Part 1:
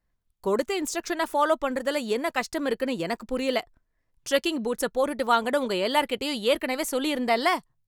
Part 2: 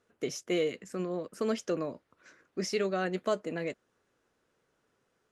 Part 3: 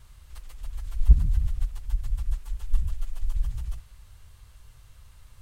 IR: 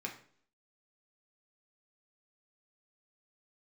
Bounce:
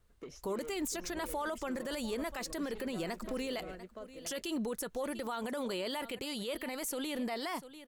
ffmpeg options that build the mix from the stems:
-filter_complex "[0:a]highshelf=f=7.1k:g=7.5,volume=-2.5dB,asplit=2[a][b];[b]volume=-23dB[c];[1:a]highshelf=f=3.6k:g=-10,tremolo=f=8.9:d=0.29,volume=-5.5dB,asplit=2[d][e];[e]volume=-10dB[f];[2:a]volume=-19.5dB[g];[d][g]amix=inputs=2:normalize=0,asoftclip=type=tanh:threshold=-37dB,acompressor=threshold=-44dB:ratio=3,volume=0dB[h];[c][f]amix=inputs=2:normalize=0,aecho=0:1:693:1[i];[a][h][i]amix=inputs=3:normalize=0,alimiter=level_in=4.5dB:limit=-24dB:level=0:latency=1:release=50,volume=-4.5dB"

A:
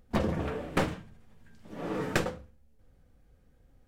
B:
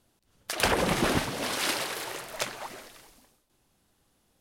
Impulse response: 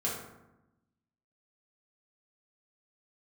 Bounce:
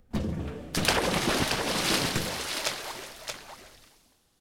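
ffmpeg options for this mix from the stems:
-filter_complex "[0:a]acrossover=split=330|3000[a][b][c];[b]acompressor=threshold=-59dB:ratio=1.5[d];[a][d][c]amix=inputs=3:normalize=0,volume=0.5dB[e];[1:a]equalizer=f=4.7k:t=o:w=1.6:g=5,adelay=250,volume=-1.5dB,asplit=2[f][g];[g]volume=-6dB,aecho=0:1:627:1[h];[e][f][h]amix=inputs=3:normalize=0"

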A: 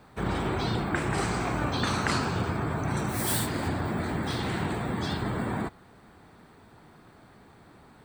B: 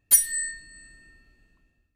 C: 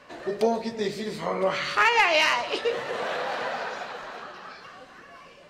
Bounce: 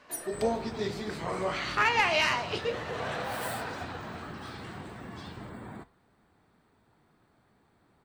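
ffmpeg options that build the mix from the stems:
-filter_complex "[0:a]adelay=150,volume=-8.5dB[a];[1:a]volume=-16.5dB[b];[2:a]bandreject=f=550:w=12,volume=-0.5dB[c];[a][b][c]amix=inputs=3:normalize=0,flanger=delay=3.1:depth=6.6:regen=-81:speed=1.8:shape=sinusoidal"

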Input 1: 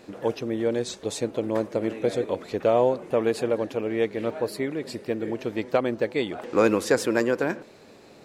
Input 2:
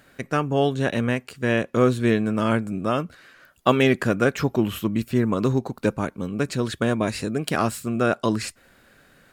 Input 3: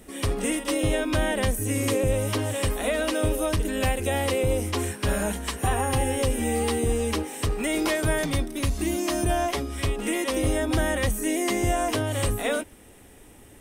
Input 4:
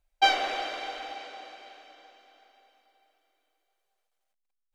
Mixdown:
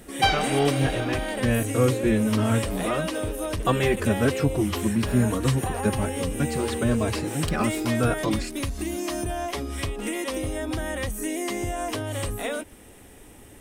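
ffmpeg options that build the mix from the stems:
-filter_complex "[0:a]acrusher=bits=3:mix=0:aa=0.5,volume=-18dB[a];[1:a]equalizer=f=100:t=o:w=2.7:g=5.5,asplit=2[b][c];[c]adelay=3.8,afreqshift=1.1[d];[b][d]amix=inputs=2:normalize=1,volume=-2dB[e];[2:a]acompressor=threshold=-28dB:ratio=6,volume=2dB[f];[3:a]acontrast=87,volume=-6dB[g];[a][e][f][g]amix=inputs=4:normalize=0"

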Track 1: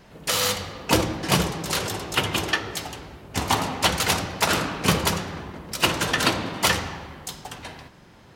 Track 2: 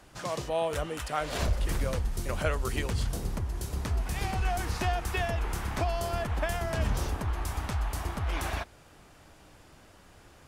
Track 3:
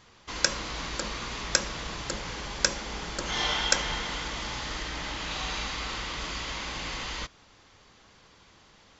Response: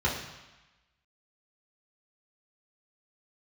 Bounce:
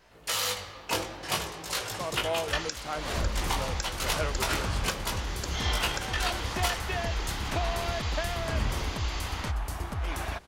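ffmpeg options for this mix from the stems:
-filter_complex "[0:a]equalizer=f=180:w=0.72:g=-12,flanger=delay=18:depth=3.2:speed=0.53,volume=-2.5dB[a];[1:a]adelay=1750,volume=-1dB[b];[2:a]acrossover=split=2300[c][d];[c]aeval=exprs='val(0)*(1-0.5/2+0.5/2*cos(2*PI*1.1*n/s))':c=same[e];[d]aeval=exprs='val(0)*(1-0.5/2-0.5/2*cos(2*PI*1.1*n/s))':c=same[f];[e][f]amix=inputs=2:normalize=0,adelay=2250,volume=-1dB[g];[a][b][g]amix=inputs=3:normalize=0,alimiter=limit=-15.5dB:level=0:latency=1:release=392"

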